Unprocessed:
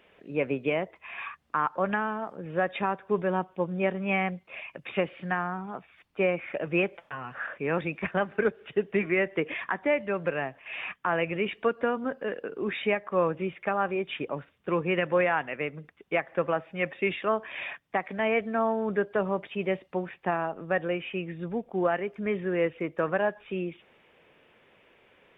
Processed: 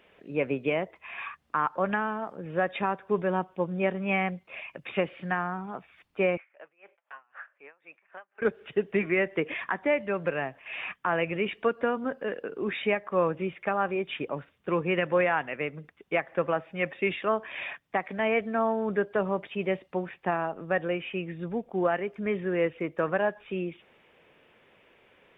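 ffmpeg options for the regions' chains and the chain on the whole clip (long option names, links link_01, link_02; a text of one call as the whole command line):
ffmpeg -i in.wav -filter_complex "[0:a]asettb=1/sr,asplit=3[link_01][link_02][link_03];[link_01]atrim=end=6.374[link_04];[link_02]atrim=start=6.37:end=8.42,asetpts=PTS-STARTPTS,afade=type=in:duration=0.004:curve=qsin,afade=type=out:start_time=2.046:duration=0.004:curve=qsin,acompressor=threshold=-38dB:ratio=2.5:attack=3.2:release=140:knee=1:detection=peak,highpass=770,lowpass=2500,aeval=exprs='val(0)*pow(10,-27*(0.5-0.5*cos(2*PI*3.9*n/s))/20)':channel_layout=same[link_05];[link_03]atrim=start=8.416[link_06];[link_04][link_05]acrossfade=duration=0.004:curve1=hsin:curve2=qsin[link_07];[link_07][link_06]acrossfade=duration=0.004:curve1=qsin:curve2=hsin" out.wav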